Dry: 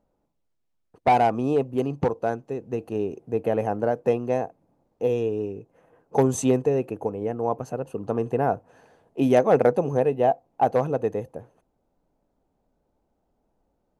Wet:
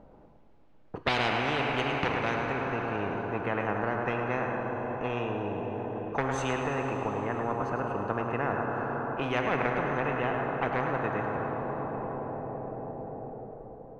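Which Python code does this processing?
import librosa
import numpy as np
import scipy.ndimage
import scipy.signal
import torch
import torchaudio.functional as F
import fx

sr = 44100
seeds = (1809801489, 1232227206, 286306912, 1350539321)

y = fx.lowpass(x, sr, hz=fx.steps((0.0, 2500.0), (2.52, 1200.0)), slope=12)
y = y + 10.0 ** (-9.5 / 20.0) * np.pad(y, (int(107 * sr / 1000.0), 0))[:len(y)]
y = fx.rev_plate(y, sr, seeds[0], rt60_s=4.4, hf_ratio=0.85, predelay_ms=0, drr_db=5.0)
y = fx.spectral_comp(y, sr, ratio=4.0)
y = F.gain(torch.from_numpy(y), -9.0).numpy()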